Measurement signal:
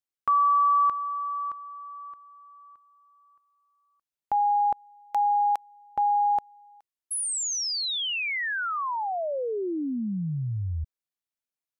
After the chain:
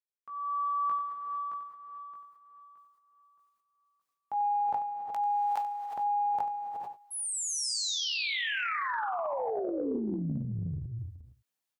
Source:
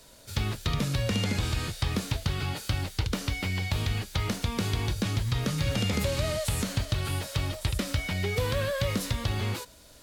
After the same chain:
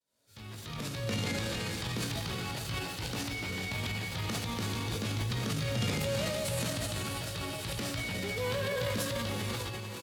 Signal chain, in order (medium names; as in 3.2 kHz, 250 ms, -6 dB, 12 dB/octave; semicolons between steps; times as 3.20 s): fade-in on the opening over 1.10 s; high-pass 110 Hz 12 dB/octave; doubling 18 ms -6.5 dB; delay 92 ms -14.5 dB; gated-style reverb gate 480 ms rising, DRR 3.5 dB; transient shaper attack -5 dB, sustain +9 dB; trim -6 dB